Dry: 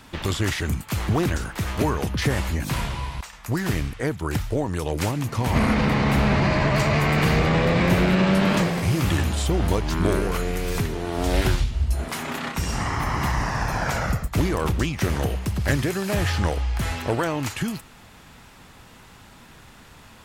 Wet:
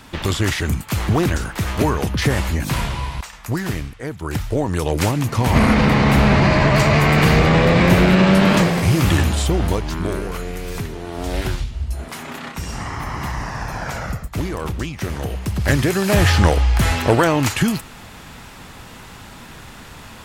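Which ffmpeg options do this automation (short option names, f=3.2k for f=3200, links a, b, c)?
-af "volume=26.5dB,afade=t=out:st=3.33:d=0.66:silence=0.334965,afade=t=in:st=3.99:d=0.8:silence=0.281838,afade=t=out:st=9.22:d=0.83:silence=0.398107,afade=t=in:st=15.21:d=1.04:silence=0.281838"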